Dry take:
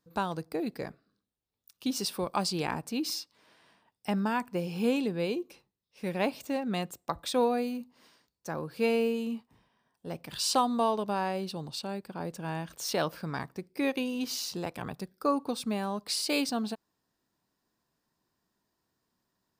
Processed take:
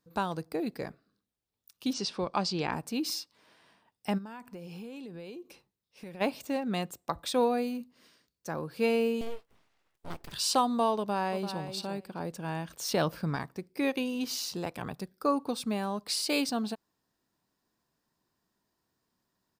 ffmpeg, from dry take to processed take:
ffmpeg -i in.wav -filter_complex "[0:a]asettb=1/sr,asplit=3[link_01][link_02][link_03];[link_01]atrim=end=1.934[link_04];[link_02]atrim=start=1.93:end=2.73,asetpts=PTS-STARTPTS,afade=type=in:duration=0.004:curve=qsin,afade=type=out:start_time=0.796:duration=0.004:curve=qsin,lowpass=frequency=6300:width=0.5412,lowpass=frequency=6300:width=1.3066[link_05];[link_03]atrim=start=2.726[link_06];[link_04][link_05]acrossfade=duration=0.004:curve1=hsin:curve2=qsin[link_07];[link_07][link_06]acrossfade=duration=0.004:curve1=qsin:curve2=hsin,asplit=3[link_08][link_09][link_10];[link_08]afade=type=out:start_time=4.17:duration=0.02[link_11];[link_09]acompressor=threshold=-40dB:ratio=10:attack=3.2:release=140:knee=1:detection=peak,afade=type=in:start_time=4.17:duration=0.02,afade=type=out:start_time=6.2:duration=0.02[link_12];[link_10]afade=type=in:start_time=6.2:duration=0.02[link_13];[link_11][link_12][link_13]amix=inputs=3:normalize=0,asettb=1/sr,asplit=3[link_14][link_15][link_16];[link_14]atrim=end=7.804[link_17];[link_15]atrim=start=7.8:end=8.48,asetpts=PTS-STARTPTS,afade=type=in:duration=0.004:curve=qsin,afade=type=out:start_time=0.676:duration=0.004:curve=qsin,equalizer=frequency=870:width=2.6:gain=-9[link_18];[link_16]atrim=start=8.476[link_19];[link_17][link_18]acrossfade=duration=0.004:curve1=hsin:curve2=qsin[link_20];[link_20][link_19]acrossfade=duration=0.004:curve1=qsin:curve2=hsin,asettb=1/sr,asplit=3[link_21][link_22][link_23];[link_21]atrim=end=9.214[link_24];[link_22]atrim=start=9.21:end=10.32,asetpts=PTS-STARTPTS,afade=type=in:duration=0.004:curve=qsin,afade=type=out:start_time=1.106:duration=0.004:curve=qsin,aeval=exprs='abs(val(0))':channel_layout=same[link_25];[link_23]atrim=start=10.316[link_26];[link_24][link_25]acrossfade=duration=0.004:curve1=hsin:curve2=qsin[link_27];[link_27][link_26]acrossfade=duration=0.004:curve1=qsin:curve2=hsin,asplit=2[link_28][link_29];[link_29]afade=type=in:start_time=10.98:duration=0.01,afade=type=out:start_time=11.64:duration=0.01,aecho=0:1:340|680:0.334965|0.0502448[link_30];[link_28][link_30]amix=inputs=2:normalize=0,asettb=1/sr,asplit=3[link_31][link_32][link_33];[link_31]atrim=end=12.904[link_34];[link_32]atrim=start=12.9:end=13.36,asetpts=PTS-STARTPTS,afade=type=in:duration=0.004:curve=qsin,afade=type=out:start_time=0.456:duration=0.004:curve=qsin,lowshelf=frequency=220:gain=8.5[link_35];[link_33]atrim=start=13.356[link_36];[link_34][link_35]acrossfade=duration=0.004:curve1=hsin:curve2=qsin[link_37];[link_37][link_36]acrossfade=duration=0.004:curve1=qsin:curve2=hsin" out.wav

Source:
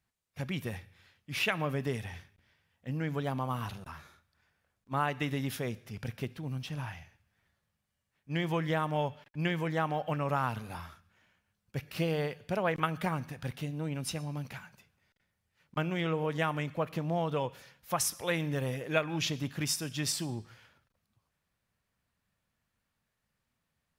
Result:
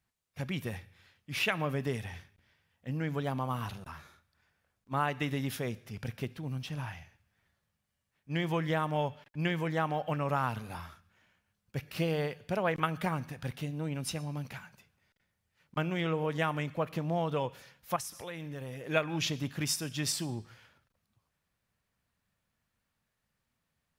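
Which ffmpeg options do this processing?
ffmpeg -i in.wav -filter_complex "[0:a]asettb=1/sr,asplit=3[link_01][link_02][link_03];[link_01]atrim=end=17.964[link_04];[link_02]atrim=start=17.96:end=18.87,asetpts=PTS-STARTPTS,afade=type=in:duration=0.004:curve=qsin,afade=type=out:start_time=0.906:duration=0.004:curve=qsin,acompressor=threshold=-39dB:ratio=4:attack=3.2:release=140:knee=1:detection=peak[link_05];[link_03]atrim=start=18.866[link_06];[link_04][link_05]acrossfade=duration=0.004:curve1=hsin:curve2=qsin[link_07];[link_07][link_06]acrossfade=duration=0.004:curve1=qsin:curve2=hsin" out.wav

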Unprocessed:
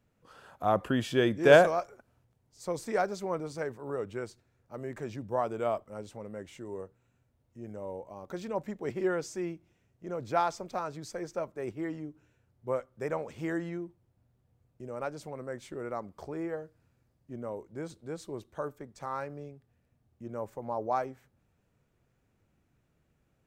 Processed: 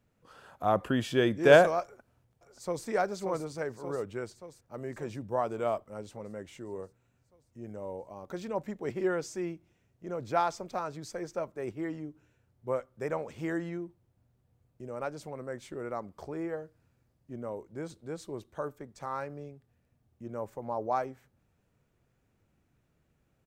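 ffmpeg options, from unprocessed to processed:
ffmpeg -i in.wav -filter_complex "[0:a]asplit=2[link_01][link_02];[link_02]afade=type=in:start_time=1.83:duration=0.01,afade=type=out:start_time=2.86:duration=0.01,aecho=0:1:580|1160|1740|2320|2900|3480|4060|4640|5220:0.473151|0.307548|0.199906|0.129939|0.0844605|0.0548993|0.0356845|0.023195|0.0150767[link_03];[link_01][link_03]amix=inputs=2:normalize=0" out.wav

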